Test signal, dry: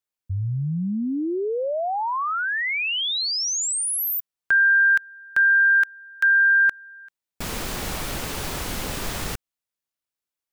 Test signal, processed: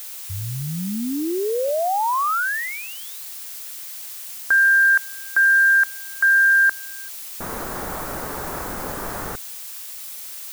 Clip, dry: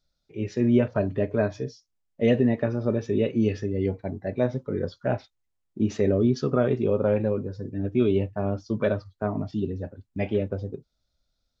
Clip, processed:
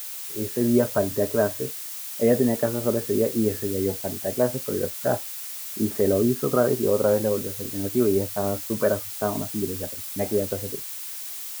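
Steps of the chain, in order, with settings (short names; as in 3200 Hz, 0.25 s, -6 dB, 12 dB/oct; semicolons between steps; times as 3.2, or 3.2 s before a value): LPF 1600 Hz 24 dB/oct; low shelf 250 Hz -10.5 dB; added noise blue -40 dBFS; gain +5 dB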